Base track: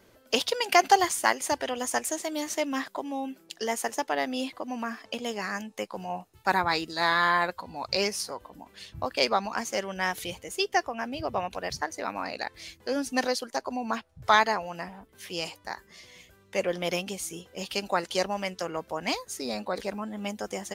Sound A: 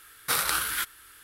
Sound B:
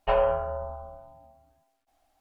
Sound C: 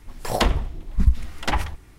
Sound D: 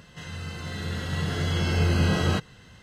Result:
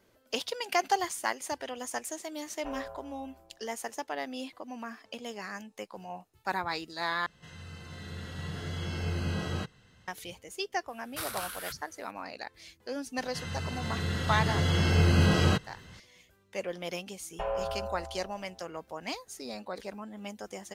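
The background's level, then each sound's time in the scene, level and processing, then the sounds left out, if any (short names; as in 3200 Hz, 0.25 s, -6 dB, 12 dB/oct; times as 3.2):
base track -7.5 dB
2.57 add B -18 dB
7.26 replace with D -10 dB
10.88 add A -11.5 dB
13.18 add D -0.5 dB
17.32 add B -4.5 dB + limiter -19.5 dBFS
not used: C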